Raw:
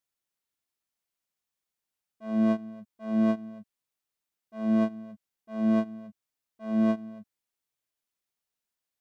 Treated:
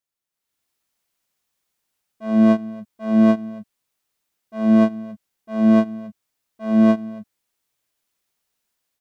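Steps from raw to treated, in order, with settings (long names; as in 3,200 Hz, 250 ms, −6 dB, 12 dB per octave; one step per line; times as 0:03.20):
automatic gain control gain up to 12 dB
level −1 dB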